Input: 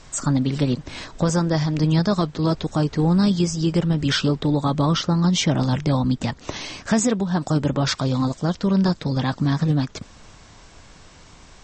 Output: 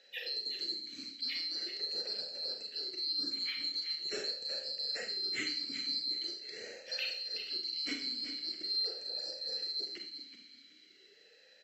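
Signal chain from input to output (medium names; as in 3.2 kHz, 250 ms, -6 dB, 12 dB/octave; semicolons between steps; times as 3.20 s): split-band scrambler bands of 4 kHz; feedback delay 375 ms, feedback 21%, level -10 dB; Schroeder reverb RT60 0.5 s, combs from 29 ms, DRR 2.5 dB; talking filter e-i 0.43 Hz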